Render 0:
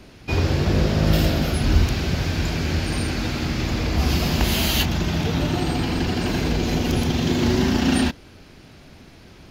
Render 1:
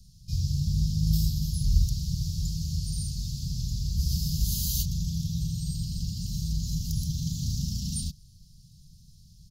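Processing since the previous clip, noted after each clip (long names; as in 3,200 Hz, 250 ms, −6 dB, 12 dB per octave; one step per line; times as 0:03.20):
inverse Chebyshev band-stop filter 340–2,200 Hz, stop band 50 dB
comb filter 5.7 ms, depth 38%
level −3 dB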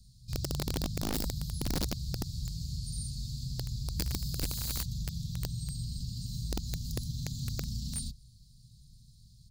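EQ curve with evenly spaced ripples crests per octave 0.98, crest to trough 9 dB
downward compressor 1.5 to 1, threshold −32 dBFS, peak gain reduction 6 dB
wrap-around overflow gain 22 dB
level −4 dB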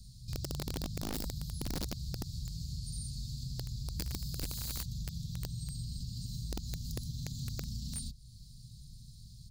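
downward compressor 2 to 1, threshold −49 dBFS, peak gain reduction 11 dB
level +5.5 dB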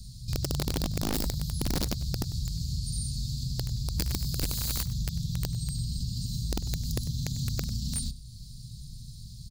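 single-tap delay 98 ms −17.5 dB
level +8 dB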